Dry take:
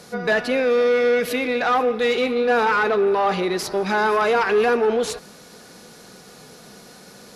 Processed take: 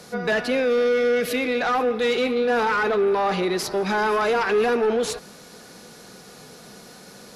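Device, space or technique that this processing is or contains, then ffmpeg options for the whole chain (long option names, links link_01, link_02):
one-band saturation: -filter_complex "[0:a]acrossover=split=300|3500[link_01][link_02][link_03];[link_02]asoftclip=type=tanh:threshold=-17.5dB[link_04];[link_01][link_04][link_03]amix=inputs=3:normalize=0,asettb=1/sr,asplit=3[link_05][link_06][link_07];[link_05]atrim=end=0.934[link_08];[link_06]atrim=start=0.93:end=1.57,asetpts=PTS-STARTPTS,afade=type=in:duration=0.004:curve=qsin,afade=type=out:start_time=0.636:duration=0.004:curve=qsin,bandreject=frequency=930:width=6[link_09];[link_07]atrim=start=1.566[link_10];[link_08][link_09]acrossfade=duration=0.004:curve1=hsin:curve2=qsin[link_11];[link_11][link_10]acrossfade=duration=0.004:curve1=qsin:curve2=hsin"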